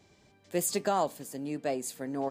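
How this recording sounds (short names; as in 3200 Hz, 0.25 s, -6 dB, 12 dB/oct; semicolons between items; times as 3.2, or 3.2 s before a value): noise floor -64 dBFS; spectral tilt -4.0 dB/oct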